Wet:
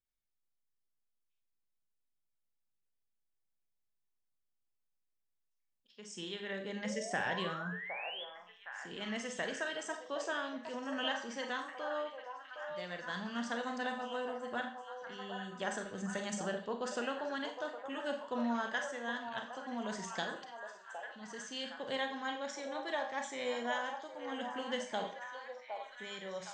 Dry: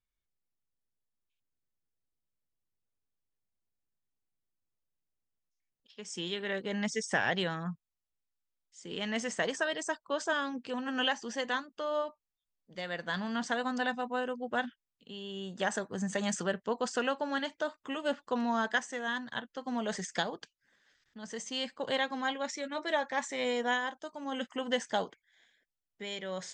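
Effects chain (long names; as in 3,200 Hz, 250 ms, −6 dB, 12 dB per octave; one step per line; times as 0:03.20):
echo through a band-pass that steps 763 ms, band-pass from 750 Hz, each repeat 0.7 octaves, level −4 dB
sound drawn into the spectrogram rise, 0:06.84–0:08.24, 490–3,500 Hz −38 dBFS
four-comb reverb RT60 0.41 s, combs from 30 ms, DRR 5 dB
level −7 dB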